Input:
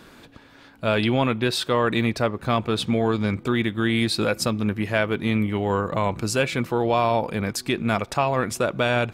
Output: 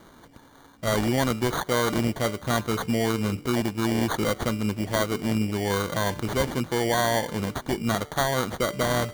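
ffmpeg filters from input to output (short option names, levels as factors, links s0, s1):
-af "bandreject=f=147.5:t=h:w=4,bandreject=f=295:t=h:w=4,bandreject=f=442.5:t=h:w=4,bandreject=f=590:t=h:w=4,bandreject=f=737.5:t=h:w=4,bandreject=f=885:t=h:w=4,bandreject=f=1032.5:t=h:w=4,bandreject=f=1180:t=h:w=4,bandreject=f=1327.5:t=h:w=4,acrusher=samples=17:mix=1:aa=0.000001,volume=0.75"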